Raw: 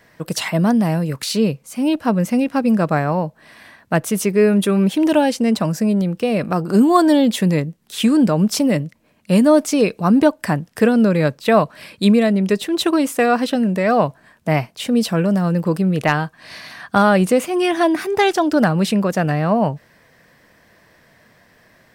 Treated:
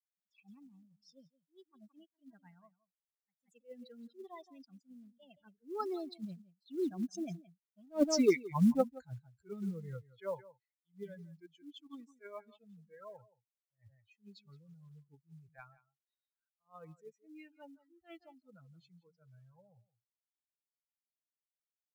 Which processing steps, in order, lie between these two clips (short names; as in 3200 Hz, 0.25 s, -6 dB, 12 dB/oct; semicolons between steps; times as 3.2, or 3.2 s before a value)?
per-bin expansion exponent 3; Doppler pass-by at 7.99, 57 m/s, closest 10 m; Chebyshev low-pass 4900 Hz, order 3; high shelf 3400 Hz +4 dB; in parallel at -10 dB: hard clip -22.5 dBFS, distortion -4 dB; on the sum: short-mantissa float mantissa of 4-bit; on a send: echo 0.171 s -19.5 dB; on the sum: attack slew limiter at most 330 dB/s